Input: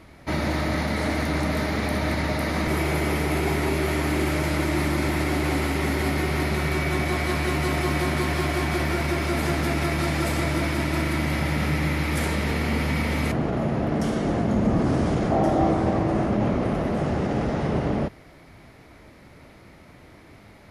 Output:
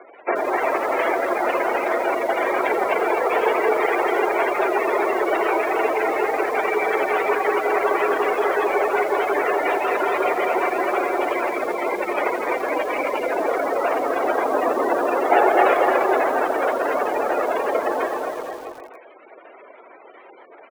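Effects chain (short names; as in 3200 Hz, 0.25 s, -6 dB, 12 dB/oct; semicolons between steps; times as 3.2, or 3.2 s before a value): half-waves squared off; reverb removal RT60 1.6 s; on a send: bouncing-ball echo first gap 0.25 s, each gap 0.85×, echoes 5; on the sum: spectral gate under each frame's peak -20 dB strong; in parallel at -3.5 dB: soft clip -11 dBFS, distortion -24 dB; on the sum: mistuned SSB +51 Hz 380–3000 Hz; lo-fi delay 84 ms, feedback 80%, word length 6-bit, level -13 dB; gain +2.5 dB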